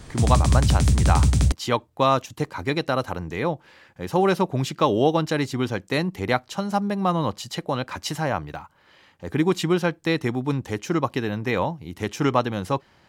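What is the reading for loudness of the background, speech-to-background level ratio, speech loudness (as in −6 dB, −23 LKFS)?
−20.0 LKFS, −5.0 dB, −25.0 LKFS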